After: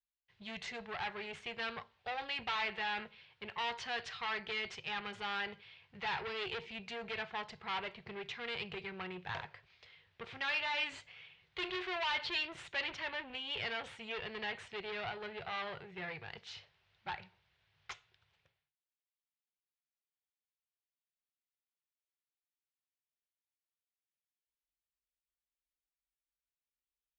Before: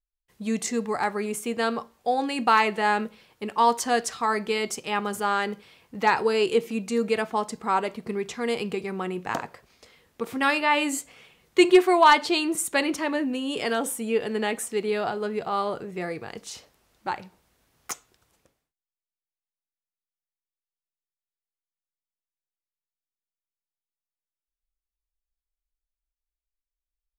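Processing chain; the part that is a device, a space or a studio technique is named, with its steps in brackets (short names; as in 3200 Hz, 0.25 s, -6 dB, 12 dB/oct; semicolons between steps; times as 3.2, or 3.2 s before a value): scooped metal amplifier (tube stage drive 28 dB, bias 0.55; speaker cabinet 79–3600 Hz, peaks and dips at 99 Hz +10 dB, 150 Hz +7 dB, 370 Hz +9 dB, 1200 Hz -5 dB; passive tone stack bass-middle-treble 10-0-10); gain +4 dB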